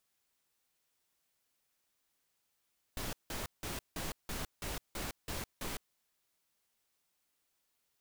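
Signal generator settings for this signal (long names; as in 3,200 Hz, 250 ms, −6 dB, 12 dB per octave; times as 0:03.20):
noise bursts pink, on 0.16 s, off 0.17 s, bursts 9, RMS −39.5 dBFS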